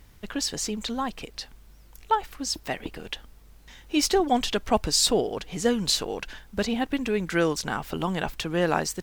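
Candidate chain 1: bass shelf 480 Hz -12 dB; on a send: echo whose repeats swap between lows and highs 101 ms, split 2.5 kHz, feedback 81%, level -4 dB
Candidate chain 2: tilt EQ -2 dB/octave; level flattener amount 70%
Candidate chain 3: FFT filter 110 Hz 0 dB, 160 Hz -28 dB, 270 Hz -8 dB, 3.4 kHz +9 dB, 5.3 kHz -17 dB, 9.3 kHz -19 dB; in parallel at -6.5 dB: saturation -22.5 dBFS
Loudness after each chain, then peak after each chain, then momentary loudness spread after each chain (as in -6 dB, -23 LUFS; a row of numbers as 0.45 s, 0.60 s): -27.5 LUFS, -20.5 LUFS, -25.5 LUFS; -8.0 dBFS, -4.0 dBFS, -5.5 dBFS; 13 LU, 9 LU, 11 LU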